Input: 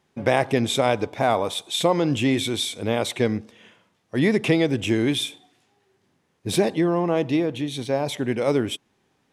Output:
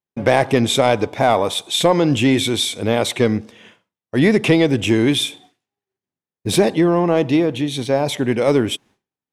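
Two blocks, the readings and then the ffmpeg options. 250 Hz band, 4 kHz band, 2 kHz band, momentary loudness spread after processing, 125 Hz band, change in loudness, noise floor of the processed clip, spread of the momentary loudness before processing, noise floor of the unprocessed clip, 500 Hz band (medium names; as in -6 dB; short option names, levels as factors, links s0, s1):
+6.0 dB, +6.0 dB, +5.5 dB, 5 LU, +5.5 dB, +5.5 dB, under -85 dBFS, 6 LU, -69 dBFS, +5.5 dB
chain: -af "acontrast=59,agate=range=0.0224:threshold=0.00794:ratio=3:detection=peak"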